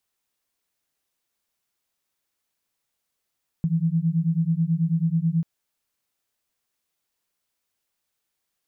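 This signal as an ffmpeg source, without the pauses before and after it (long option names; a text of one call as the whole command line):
ffmpeg -f lavfi -i "aevalsrc='0.075*(sin(2*PI*160*t)+sin(2*PI*169.2*t))':duration=1.79:sample_rate=44100" out.wav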